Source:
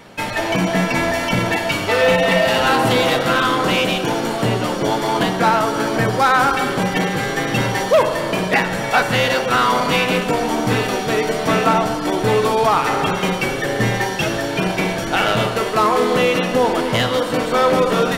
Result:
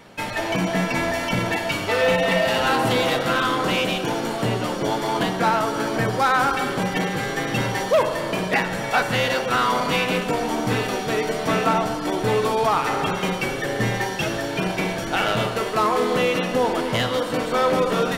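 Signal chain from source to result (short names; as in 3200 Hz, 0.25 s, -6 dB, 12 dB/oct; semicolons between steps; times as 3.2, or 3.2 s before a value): 13.93–16.36 requantised 10-bit, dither none; gain -4.5 dB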